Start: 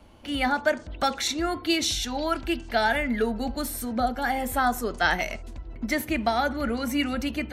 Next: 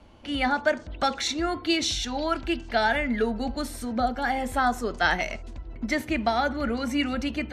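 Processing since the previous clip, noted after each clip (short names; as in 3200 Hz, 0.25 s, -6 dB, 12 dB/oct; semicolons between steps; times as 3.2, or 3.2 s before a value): LPF 7200 Hz 12 dB/oct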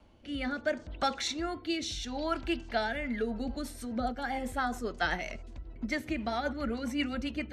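rotary speaker horn 0.7 Hz, later 7.5 Hz, at 2.72; gain -4.5 dB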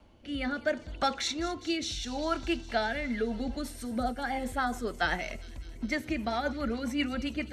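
thin delay 0.204 s, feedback 73%, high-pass 4000 Hz, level -12 dB; gain +1.5 dB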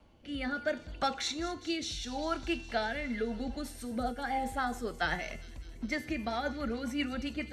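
resonator 160 Hz, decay 0.63 s, harmonics odd, mix 70%; gain +7 dB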